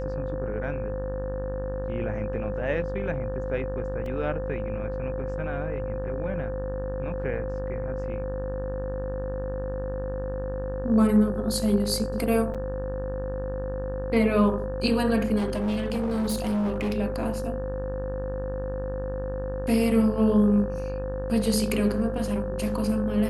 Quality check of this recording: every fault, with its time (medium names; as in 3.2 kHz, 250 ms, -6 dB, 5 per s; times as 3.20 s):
buzz 50 Hz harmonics 36 -33 dBFS
whine 520 Hz -31 dBFS
4.06 s: dropout 2.4 ms
12.54–12.55 s: dropout 6.5 ms
15.37–16.98 s: clipped -23 dBFS